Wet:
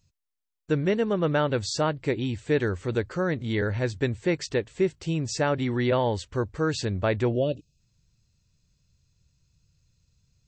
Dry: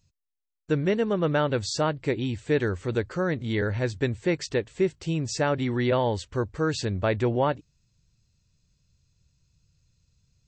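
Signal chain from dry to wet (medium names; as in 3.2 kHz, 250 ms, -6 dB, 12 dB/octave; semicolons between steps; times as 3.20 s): time-frequency box 7.32–7.80 s, 690–2400 Hz -25 dB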